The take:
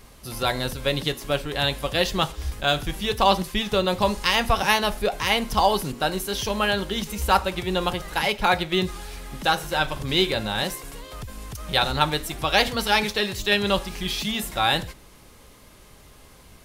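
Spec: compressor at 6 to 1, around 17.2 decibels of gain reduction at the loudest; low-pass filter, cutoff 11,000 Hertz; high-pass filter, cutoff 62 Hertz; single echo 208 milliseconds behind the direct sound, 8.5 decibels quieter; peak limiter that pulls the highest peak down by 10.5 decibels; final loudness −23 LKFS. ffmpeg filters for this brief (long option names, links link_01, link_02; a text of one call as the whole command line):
ffmpeg -i in.wav -af "highpass=62,lowpass=11000,acompressor=threshold=-34dB:ratio=6,alimiter=level_in=3dB:limit=-24dB:level=0:latency=1,volume=-3dB,aecho=1:1:208:0.376,volume=15.5dB" out.wav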